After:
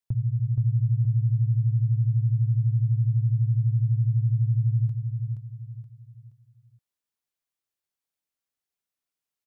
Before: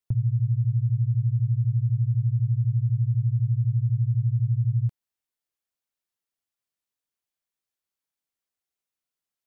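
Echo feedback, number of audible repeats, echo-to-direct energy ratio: 36%, 4, -5.0 dB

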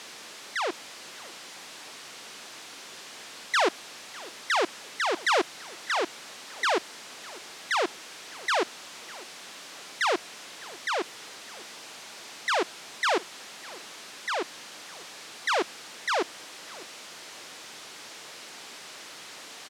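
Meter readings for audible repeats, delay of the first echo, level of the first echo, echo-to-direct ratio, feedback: 2, 603 ms, -21.0 dB, -20.5 dB, 26%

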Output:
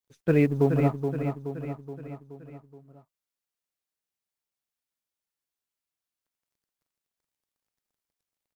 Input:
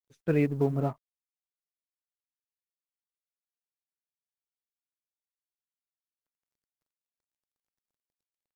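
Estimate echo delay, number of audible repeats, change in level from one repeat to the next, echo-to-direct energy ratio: 424 ms, 5, -5.5 dB, -5.5 dB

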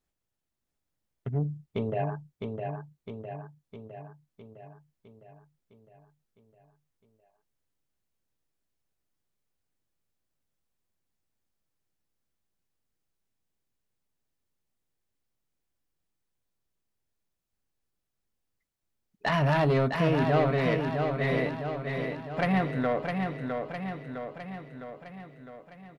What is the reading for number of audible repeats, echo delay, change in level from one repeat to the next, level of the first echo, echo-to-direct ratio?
7, 658 ms, -4.5 dB, -5.0 dB, -3.0 dB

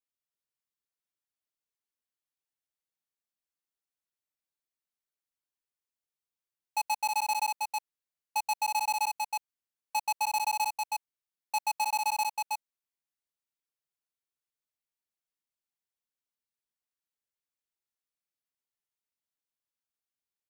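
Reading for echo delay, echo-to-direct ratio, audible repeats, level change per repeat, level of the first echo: 320 ms, -3.0 dB, 1, no regular repeats, -3.0 dB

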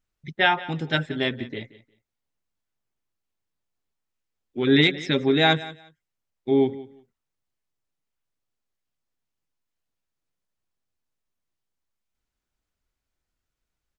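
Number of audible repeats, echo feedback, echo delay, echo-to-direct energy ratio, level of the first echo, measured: 2, 18%, 178 ms, -18.0 dB, -18.0 dB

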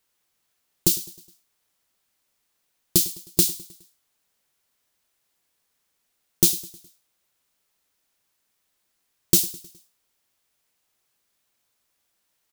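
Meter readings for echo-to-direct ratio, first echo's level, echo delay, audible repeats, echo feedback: -18.0 dB, -19.5 dB, 104 ms, 3, 51%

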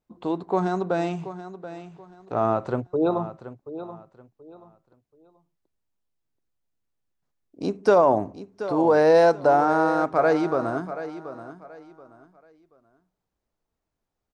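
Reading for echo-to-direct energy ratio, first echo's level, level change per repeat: -12.5 dB, -13.0 dB, -11.5 dB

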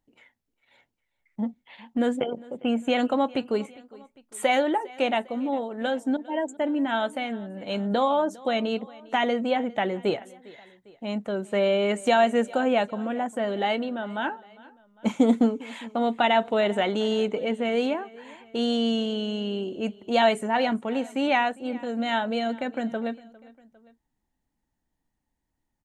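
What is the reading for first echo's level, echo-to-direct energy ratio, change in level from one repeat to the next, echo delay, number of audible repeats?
-22.0 dB, -21.0 dB, -5.0 dB, 403 ms, 2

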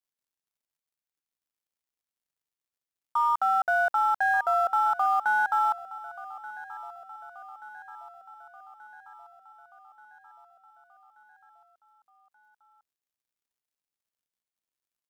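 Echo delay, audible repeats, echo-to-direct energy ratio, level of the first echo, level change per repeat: 1181 ms, 4, -15.5 dB, -17.5 dB, -4.5 dB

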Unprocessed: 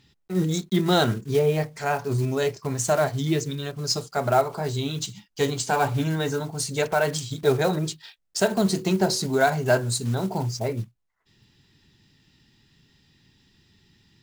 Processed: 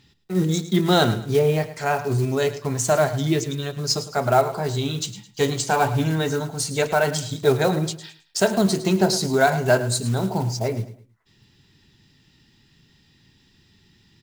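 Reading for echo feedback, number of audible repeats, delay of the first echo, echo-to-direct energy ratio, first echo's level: 31%, 3, 107 ms, -13.5 dB, -14.0 dB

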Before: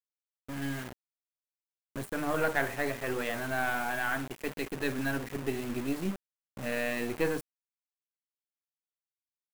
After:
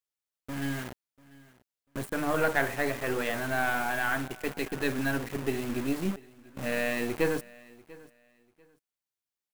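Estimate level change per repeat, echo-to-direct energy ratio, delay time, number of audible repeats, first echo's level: -12.5 dB, -22.0 dB, 692 ms, 2, -22.0 dB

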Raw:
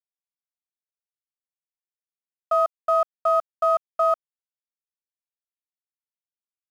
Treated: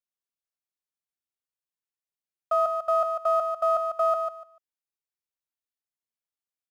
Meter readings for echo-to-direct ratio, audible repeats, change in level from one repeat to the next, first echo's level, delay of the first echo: -6.0 dB, 3, -14.0 dB, -6.0 dB, 147 ms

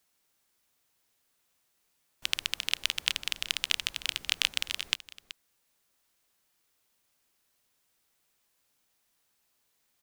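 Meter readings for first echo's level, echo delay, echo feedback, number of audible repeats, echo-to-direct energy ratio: -15.5 dB, 378 ms, no regular repeats, 1, -15.5 dB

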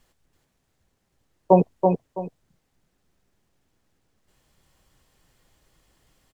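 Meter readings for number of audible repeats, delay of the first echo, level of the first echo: 2, 330 ms, -4.5 dB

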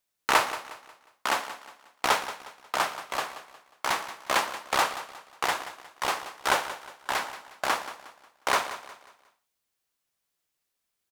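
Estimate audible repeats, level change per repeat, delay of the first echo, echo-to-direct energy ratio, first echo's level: 3, -8.5 dB, 180 ms, -13.0 dB, -13.5 dB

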